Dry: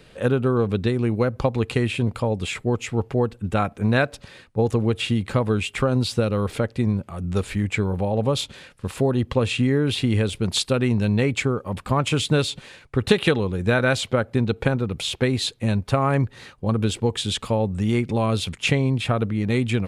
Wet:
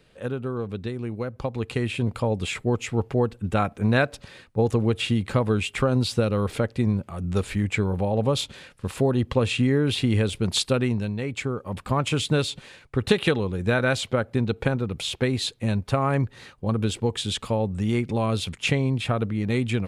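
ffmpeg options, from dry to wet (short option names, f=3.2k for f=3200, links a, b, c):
-af "volume=6.5dB,afade=t=in:st=1.33:d=0.96:silence=0.398107,afade=t=out:st=10.74:d=0.42:silence=0.354813,afade=t=in:st=11.16:d=0.65:silence=0.421697"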